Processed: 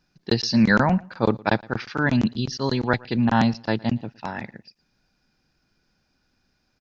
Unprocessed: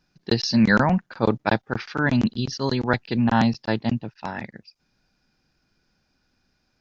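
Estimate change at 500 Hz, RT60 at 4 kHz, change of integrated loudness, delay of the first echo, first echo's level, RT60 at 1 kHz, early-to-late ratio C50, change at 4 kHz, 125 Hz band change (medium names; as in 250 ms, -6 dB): 0.0 dB, no reverb, 0.0 dB, 114 ms, -24.0 dB, no reverb, no reverb, 0.0 dB, 0.0 dB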